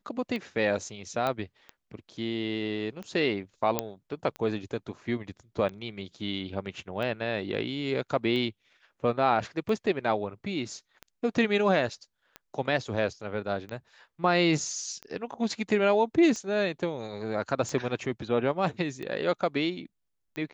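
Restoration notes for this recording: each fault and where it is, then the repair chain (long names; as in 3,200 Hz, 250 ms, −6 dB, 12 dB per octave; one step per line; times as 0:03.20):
scratch tick 45 rpm −24 dBFS
0:01.27: click −16 dBFS
0:03.79: click −9 dBFS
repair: click removal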